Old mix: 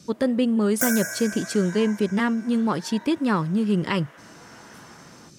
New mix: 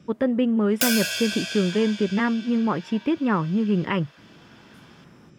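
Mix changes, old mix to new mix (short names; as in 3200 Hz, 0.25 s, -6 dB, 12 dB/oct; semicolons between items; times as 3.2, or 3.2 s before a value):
speech: add polynomial smoothing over 25 samples; first sound -7.5 dB; second sound: remove Chebyshev band-stop 2200–5500 Hz, order 5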